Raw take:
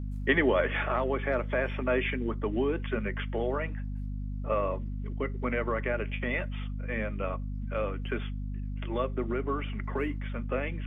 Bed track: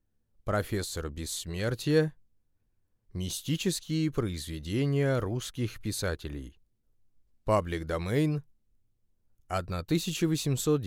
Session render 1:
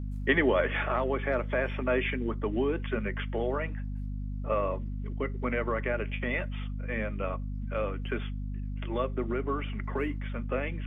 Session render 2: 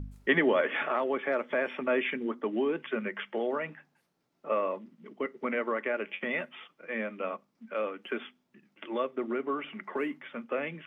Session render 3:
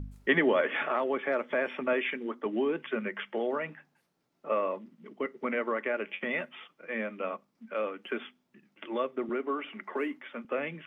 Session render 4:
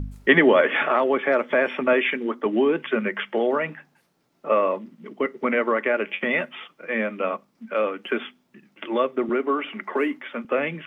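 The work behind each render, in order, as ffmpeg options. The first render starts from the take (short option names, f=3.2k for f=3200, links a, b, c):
-af anull
-af "bandreject=f=50:t=h:w=4,bandreject=f=100:t=h:w=4,bandreject=f=150:t=h:w=4,bandreject=f=200:t=h:w=4,bandreject=f=250:t=h:w=4"
-filter_complex "[0:a]asettb=1/sr,asplit=3[a][b][c];[a]atrim=end=1.934[d];[b]atrim=start=1.93:end=2.46,asetpts=PTS-STARTPTS,afade=t=in:d=0.004:c=qsin,afade=t=out:st=0.526:d=0.004:c=qsin,equalizer=f=69:t=o:w=2.5:g=-14[e];[c]atrim=start=2.456[f];[d][e]acrossfade=d=0.004:c1=hsin:c2=qsin[g];[g][f]acrossfade=d=0.004:c1=qsin:c2=hsin,asettb=1/sr,asplit=3[h][i][j];[h]atrim=end=9.294[k];[i]atrim=start=9.29:end=10.45,asetpts=PTS-STARTPTS,afade=t=in:d=0.004:c=qsin,afade=t=out:st=1.156:d=0.004:c=qsin,highpass=f=210:w=0.5412,highpass=f=210:w=1.3066[l];[j]atrim=start=10.446[m];[k][l]acrossfade=d=0.004:c1=hsin:c2=qsin[n];[n][m]acrossfade=d=0.004:c1=qsin:c2=hsin"
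-af "volume=9dB"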